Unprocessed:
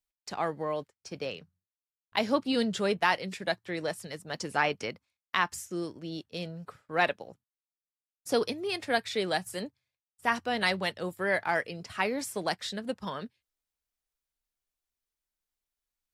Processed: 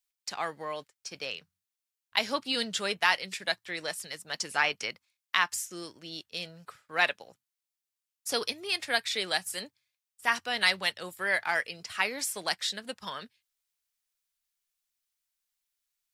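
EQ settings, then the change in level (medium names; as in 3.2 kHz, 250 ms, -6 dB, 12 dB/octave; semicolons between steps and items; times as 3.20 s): tilt shelf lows -8.5 dB, about 920 Hz; -2.0 dB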